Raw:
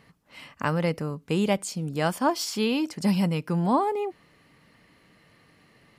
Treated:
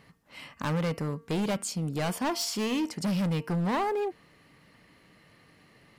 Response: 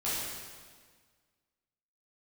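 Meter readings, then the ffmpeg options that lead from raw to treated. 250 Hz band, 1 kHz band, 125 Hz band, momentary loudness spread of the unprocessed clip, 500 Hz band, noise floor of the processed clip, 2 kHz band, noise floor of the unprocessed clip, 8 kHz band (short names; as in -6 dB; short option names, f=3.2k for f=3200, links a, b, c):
-4.0 dB, -5.0 dB, -2.5 dB, 7 LU, -4.5 dB, -60 dBFS, -3.5 dB, -60 dBFS, 0.0 dB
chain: -af "asoftclip=type=hard:threshold=-25.5dB,bandreject=f=229.1:t=h:w=4,bandreject=f=458.2:t=h:w=4,bandreject=f=687.3:t=h:w=4,bandreject=f=916.4:t=h:w=4,bandreject=f=1.1455k:t=h:w=4,bandreject=f=1.3746k:t=h:w=4,bandreject=f=1.6037k:t=h:w=4,bandreject=f=1.8328k:t=h:w=4,bandreject=f=2.0619k:t=h:w=4,bandreject=f=2.291k:t=h:w=4,bandreject=f=2.5201k:t=h:w=4,bandreject=f=2.7492k:t=h:w=4,bandreject=f=2.9783k:t=h:w=4"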